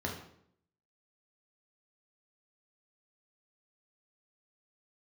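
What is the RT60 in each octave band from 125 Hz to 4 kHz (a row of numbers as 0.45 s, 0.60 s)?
0.80 s, 0.80 s, 0.75 s, 0.65 s, 0.60 s, 0.55 s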